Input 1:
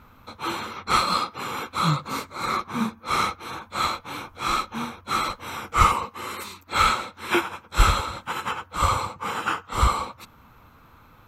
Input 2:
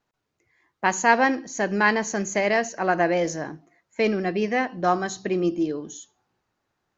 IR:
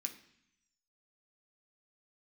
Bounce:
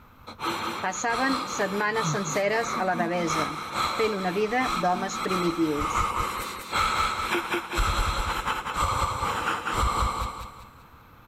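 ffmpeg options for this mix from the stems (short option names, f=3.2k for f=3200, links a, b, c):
-filter_complex "[0:a]volume=-0.5dB,asplit=2[a][b];[b]volume=-4dB[c];[1:a]aecho=1:1:6.8:0.55,volume=-2.5dB,asplit=2[d][e];[e]apad=whole_len=497340[f];[a][f]sidechaincompress=threshold=-45dB:ratio=4:attack=16:release=143[g];[c]aecho=0:1:193|386|579|772|965:1|0.38|0.144|0.0549|0.0209[h];[g][d][h]amix=inputs=3:normalize=0,alimiter=limit=-14.5dB:level=0:latency=1:release=192"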